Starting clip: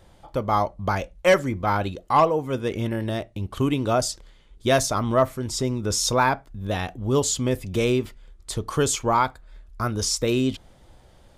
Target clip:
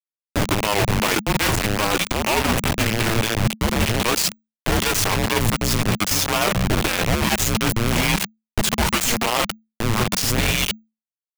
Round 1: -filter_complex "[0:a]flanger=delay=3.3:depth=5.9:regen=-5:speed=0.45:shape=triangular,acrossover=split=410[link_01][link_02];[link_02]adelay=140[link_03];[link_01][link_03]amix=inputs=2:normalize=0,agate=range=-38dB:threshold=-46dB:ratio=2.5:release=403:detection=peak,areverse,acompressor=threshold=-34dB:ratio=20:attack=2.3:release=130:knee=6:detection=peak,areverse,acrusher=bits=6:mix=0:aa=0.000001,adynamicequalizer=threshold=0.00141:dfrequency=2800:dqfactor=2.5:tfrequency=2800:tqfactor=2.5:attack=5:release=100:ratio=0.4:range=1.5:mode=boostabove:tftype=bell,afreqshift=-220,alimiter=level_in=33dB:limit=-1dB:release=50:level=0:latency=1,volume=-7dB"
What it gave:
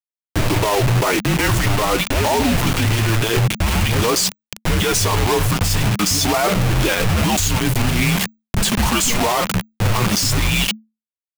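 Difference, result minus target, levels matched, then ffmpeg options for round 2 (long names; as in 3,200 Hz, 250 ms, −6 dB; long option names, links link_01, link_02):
downward compressor: peak gain reduction −7 dB
-filter_complex "[0:a]flanger=delay=3.3:depth=5.9:regen=-5:speed=0.45:shape=triangular,acrossover=split=410[link_01][link_02];[link_02]adelay=140[link_03];[link_01][link_03]amix=inputs=2:normalize=0,agate=range=-38dB:threshold=-46dB:ratio=2.5:release=403:detection=peak,areverse,acompressor=threshold=-41.5dB:ratio=20:attack=2.3:release=130:knee=6:detection=peak,areverse,acrusher=bits=6:mix=0:aa=0.000001,adynamicequalizer=threshold=0.00141:dfrequency=2800:dqfactor=2.5:tfrequency=2800:tqfactor=2.5:attack=5:release=100:ratio=0.4:range=1.5:mode=boostabove:tftype=bell,afreqshift=-220,alimiter=level_in=33dB:limit=-1dB:release=50:level=0:latency=1,volume=-7dB"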